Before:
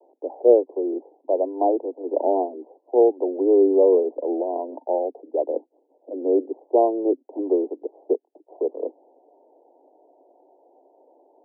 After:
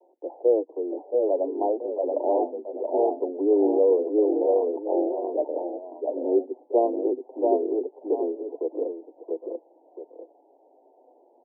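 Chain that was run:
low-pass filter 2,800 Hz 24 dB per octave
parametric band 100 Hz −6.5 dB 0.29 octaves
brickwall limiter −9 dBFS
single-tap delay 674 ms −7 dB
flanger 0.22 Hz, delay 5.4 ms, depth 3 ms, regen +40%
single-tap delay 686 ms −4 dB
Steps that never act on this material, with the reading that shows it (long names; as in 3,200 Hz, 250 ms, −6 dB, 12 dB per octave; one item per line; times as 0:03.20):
low-pass filter 2,800 Hz: nothing at its input above 960 Hz
parametric band 100 Hz: nothing at its input below 230 Hz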